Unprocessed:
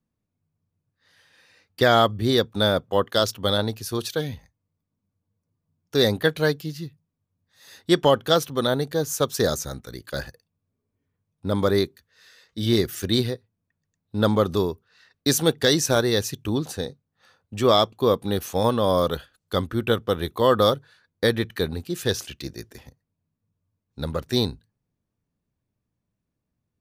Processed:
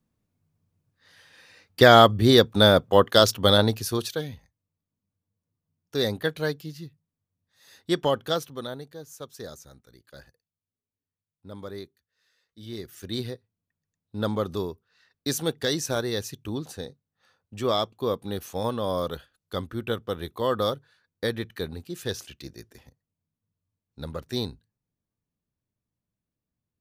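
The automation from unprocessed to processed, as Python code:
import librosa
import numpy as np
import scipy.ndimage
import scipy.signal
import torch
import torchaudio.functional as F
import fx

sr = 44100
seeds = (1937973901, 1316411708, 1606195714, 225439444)

y = fx.gain(x, sr, db=fx.line((3.76, 4.0), (4.3, -6.0), (8.27, -6.0), (8.98, -17.5), (12.71, -17.5), (13.31, -7.0)))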